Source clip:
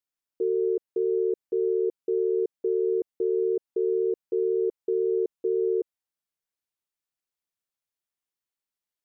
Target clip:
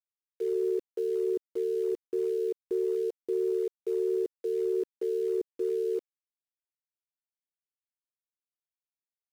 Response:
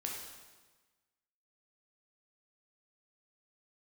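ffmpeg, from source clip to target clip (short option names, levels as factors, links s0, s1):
-filter_complex "[0:a]acrossover=split=430[s0][s1];[s0]aeval=exprs='val(0)*(1-1/2+1/2*cos(2*PI*1.5*n/s))':c=same[s2];[s1]aeval=exprs='val(0)*(1-1/2-1/2*cos(2*PI*1.5*n/s))':c=same[s3];[s2][s3]amix=inputs=2:normalize=0,atempo=0.97,aeval=exprs='val(0)*gte(abs(val(0)),0.00422)':c=same,volume=1.26"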